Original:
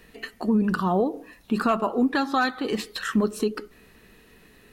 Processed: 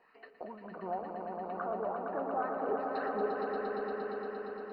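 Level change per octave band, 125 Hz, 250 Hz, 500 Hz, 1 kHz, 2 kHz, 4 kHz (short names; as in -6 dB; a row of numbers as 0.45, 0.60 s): under -15 dB, -19.0 dB, -6.5 dB, -7.5 dB, -13.0 dB, under -20 dB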